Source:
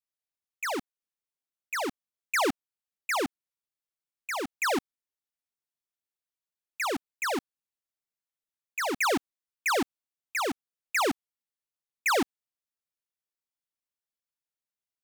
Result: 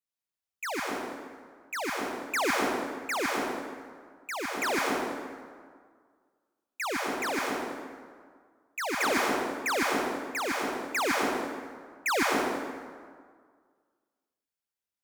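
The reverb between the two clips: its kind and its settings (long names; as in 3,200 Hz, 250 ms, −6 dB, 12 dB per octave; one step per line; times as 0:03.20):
dense smooth reverb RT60 1.8 s, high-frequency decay 0.6×, pre-delay 100 ms, DRR −2.5 dB
level −3 dB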